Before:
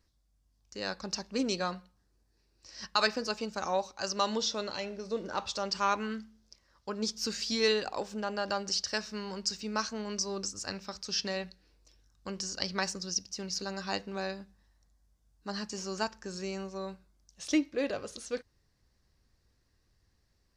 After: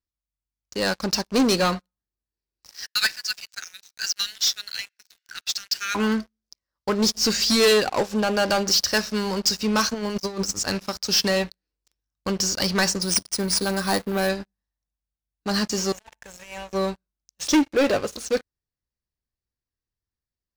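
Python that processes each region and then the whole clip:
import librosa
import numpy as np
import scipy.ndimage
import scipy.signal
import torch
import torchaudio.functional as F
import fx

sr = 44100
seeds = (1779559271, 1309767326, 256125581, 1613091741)

y = fx.chain(x, sr, fx.steep_highpass(hz=1500.0, slope=72),
    fx.peak_eq(hz=2700.0, db=-3.5, octaves=1.8), at=(2.71, 5.95))
y = fx.chain(y, sr, fx.median_filter(points=3),
    fx.over_compress(threshold_db=-40.0, ratio=-0.5), at=(9.94, 10.51))
y = fx.chain(y, sr, fx.peak_eq(hz=2800.0, db=-11.5, octaves=0.22),
    fx.resample_bad(factor=3, down='none', up='hold'), at=(13.02, 14.29))
y = fx.chain(y, sr, fx.peak_eq(hz=190.0, db=-14.0, octaves=1.6),
    fx.over_compress(threshold_db=-44.0, ratio=-1.0),
    fx.fixed_phaser(hz=1300.0, stages=6), at=(15.92, 16.73))
y = fx.leveller(y, sr, passes=5)
y = fx.upward_expand(y, sr, threshold_db=-35.0, expansion=1.5)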